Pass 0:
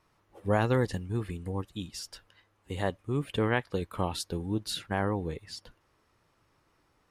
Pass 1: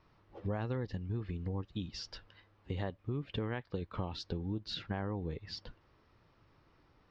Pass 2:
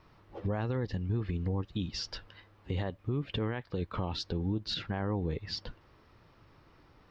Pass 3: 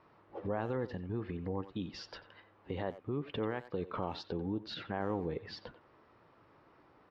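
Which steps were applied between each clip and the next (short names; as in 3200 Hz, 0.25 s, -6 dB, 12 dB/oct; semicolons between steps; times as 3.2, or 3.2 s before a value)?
steep low-pass 5300 Hz 36 dB/oct; low shelf 320 Hz +6 dB; compressor 5:1, threshold -35 dBFS, peak gain reduction 15 dB
limiter -31 dBFS, peak gain reduction 6 dB; gain +6.5 dB
band-pass 690 Hz, Q 0.51; speakerphone echo 90 ms, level -13 dB; gain +1 dB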